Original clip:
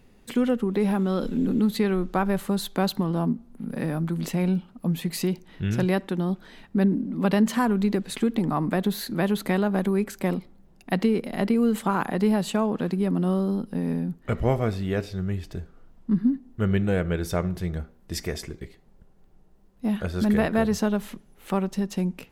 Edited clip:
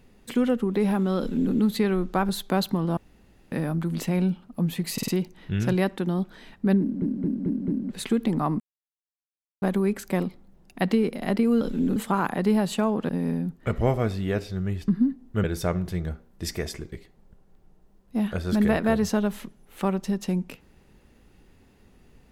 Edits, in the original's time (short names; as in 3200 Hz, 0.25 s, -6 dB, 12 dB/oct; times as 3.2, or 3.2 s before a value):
1.19–1.54 copy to 11.72
2.29–2.55 cut
3.23–3.78 room tone
5.19 stutter 0.05 s, 4 plays
6.91 stutter in place 0.22 s, 5 plays
8.71–9.73 mute
12.85–13.71 cut
15.5–16.12 cut
16.68–17.13 cut